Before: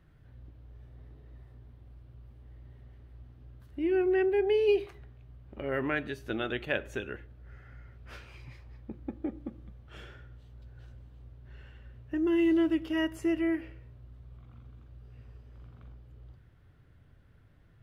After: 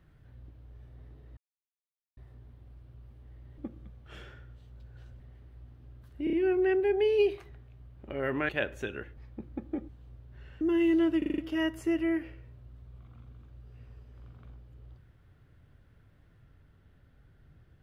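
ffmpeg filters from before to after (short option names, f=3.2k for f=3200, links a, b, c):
-filter_complex "[0:a]asplit=16[a][b][c][d][e][f][g][h][i][j][k][l][m][n][o][p];[a]atrim=end=1.37,asetpts=PTS-STARTPTS,afade=t=out:st=1.366:d=0.004:c=hsin,apad=pad_dur=0.8[q];[b]atrim=start=1.37:end=2.782,asetpts=PTS-STARTPTS,afade=t=in:d=0.004:c=hsin[r];[c]atrim=start=9.398:end=11.022[s];[d]atrim=start=2.778:end=3.852[t];[e]atrim=start=3.818:end=3.852[u];[f]atrim=start=3.818:end=3.852[v];[g]atrim=start=3.818:end=5.982[w];[h]atrim=start=6.618:end=7.302[x];[i]atrim=start=8.678:end=9.402[y];[j]atrim=start=11.018:end=11.742[z];[k]atrim=start=12.188:end=12.802[aa];[l]atrim=start=12.758:end=12.802[ab];[m]atrim=start=12.758:end=12.802[ac];[n]atrim=start=12.758:end=12.802[ad];[o]atrim=start=12.758:end=12.802[ae];[p]atrim=start=12.758[af];[q][r]concat=n=2:v=0:a=1[ag];[ag][s]acrossfade=d=0.004:c1=hsin:c2=hsin[ah];[ah][t]acrossfade=d=0.004:c1=hsin:c2=hsin[ai];[ai][u]acrossfade=d=0.004:c1=hsin:c2=hsin[aj];[aj][v]acrossfade=d=0.004:c1=hsin:c2=hsin[ak];[ak][w]acrossfade=d=0.004:c1=hsin:c2=hsin[al];[al][x]acrossfade=d=0.004:c1=hsin:c2=hsin[am];[am][y]acrossfade=d=0.004:c1=hsin:c2=hsin[an];[an][z]acrossfade=d=0.004:c1=hsin:c2=hsin[ao];[ao][aa]acrossfade=d=0.004:c1=hsin:c2=hsin[ap];[ap][ab]acrossfade=d=0.004:c1=hsin:c2=hsin[aq];[aq][ac]acrossfade=d=0.004:c1=hsin:c2=hsin[ar];[ar][ad]acrossfade=d=0.004:c1=hsin:c2=hsin[as];[as][ae]acrossfade=d=0.004:c1=hsin:c2=hsin[at];[at][af]acrossfade=d=0.004:c1=hsin:c2=hsin"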